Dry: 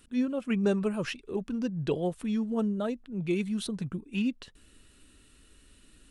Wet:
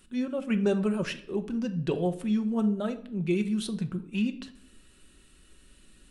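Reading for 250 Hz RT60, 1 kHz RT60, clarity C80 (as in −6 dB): 0.75 s, 0.55 s, 17.5 dB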